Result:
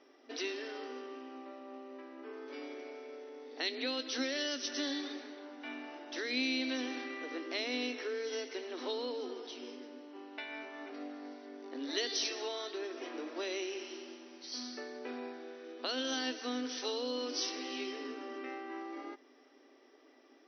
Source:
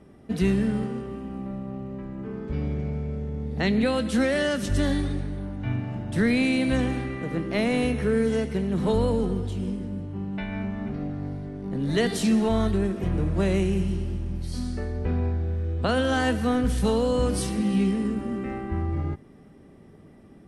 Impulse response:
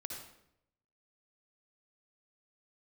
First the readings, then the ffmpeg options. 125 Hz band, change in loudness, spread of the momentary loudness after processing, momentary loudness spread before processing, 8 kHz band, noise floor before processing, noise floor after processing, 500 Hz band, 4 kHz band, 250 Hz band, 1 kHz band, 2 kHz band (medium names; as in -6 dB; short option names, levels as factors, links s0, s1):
under -40 dB, -12.5 dB, 14 LU, 10 LU, -4.5 dB, -50 dBFS, -63 dBFS, -12.5 dB, -1.0 dB, -17.0 dB, -11.5 dB, -8.5 dB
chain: -filter_complex "[0:a]aemphasis=mode=production:type=riaa,acrossover=split=360|3000[s0][s1][s2];[s1]acompressor=threshold=0.0141:ratio=4[s3];[s0][s3][s2]amix=inputs=3:normalize=0,afftfilt=real='re*between(b*sr/4096,240,6100)':imag='im*between(b*sr/4096,240,6100)':win_size=4096:overlap=0.75,volume=0.562"